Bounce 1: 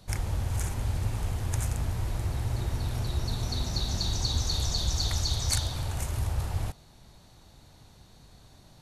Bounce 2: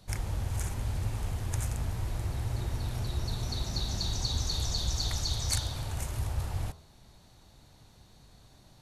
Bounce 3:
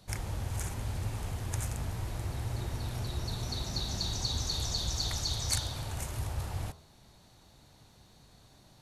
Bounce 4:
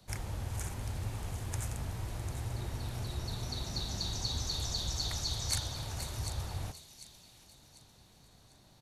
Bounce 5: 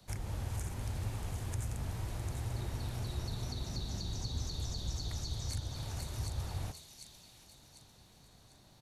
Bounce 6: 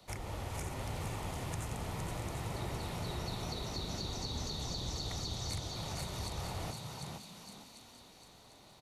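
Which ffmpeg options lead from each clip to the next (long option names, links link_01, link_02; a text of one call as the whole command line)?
ffmpeg -i in.wav -af "bandreject=frequency=81.37:width_type=h:width=4,bandreject=frequency=162.74:width_type=h:width=4,bandreject=frequency=244.11:width_type=h:width=4,bandreject=frequency=325.48:width_type=h:width=4,bandreject=frequency=406.85:width_type=h:width=4,bandreject=frequency=488.22:width_type=h:width=4,bandreject=frequency=569.59:width_type=h:width=4,bandreject=frequency=650.96:width_type=h:width=4,bandreject=frequency=732.33:width_type=h:width=4,bandreject=frequency=813.7:width_type=h:width=4,bandreject=frequency=895.07:width_type=h:width=4,bandreject=frequency=976.44:width_type=h:width=4,bandreject=frequency=1057.81:width_type=h:width=4,bandreject=frequency=1139.18:width_type=h:width=4,bandreject=frequency=1220.55:width_type=h:width=4,bandreject=frequency=1301.92:width_type=h:width=4,bandreject=frequency=1383.29:width_type=h:width=4,bandreject=frequency=1464.66:width_type=h:width=4,bandreject=frequency=1546.03:width_type=h:width=4,volume=-2.5dB" out.wav
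ffmpeg -i in.wav -af "lowshelf=frequency=65:gain=-7.5" out.wav
ffmpeg -i in.wav -filter_complex "[0:a]acrossover=split=180|1300|1900[link_01][link_02][link_03][link_04];[link_03]acrusher=bits=5:mode=log:mix=0:aa=0.000001[link_05];[link_04]aecho=1:1:746|1492|2238|2984:0.316|0.123|0.0481|0.0188[link_06];[link_01][link_02][link_05][link_06]amix=inputs=4:normalize=0,volume=-2.5dB" out.wav
ffmpeg -i in.wav -filter_complex "[0:a]acrossover=split=450[link_01][link_02];[link_02]acompressor=threshold=-46dB:ratio=3[link_03];[link_01][link_03]amix=inputs=2:normalize=0" out.wav
ffmpeg -i in.wav -filter_complex "[0:a]bass=frequency=250:gain=-10,treble=frequency=4000:gain=-6,bandreject=frequency=1600:width=7.8,asplit=5[link_01][link_02][link_03][link_04][link_05];[link_02]adelay=462,afreqshift=52,volume=-5dB[link_06];[link_03]adelay=924,afreqshift=104,volume=-14.6dB[link_07];[link_04]adelay=1386,afreqshift=156,volume=-24.3dB[link_08];[link_05]adelay=1848,afreqshift=208,volume=-33.9dB[link_09];[link_01][link_06][link_07][link_08][link_09]amix=inputs=5:normalize=0,volume=5.5dB" out.wav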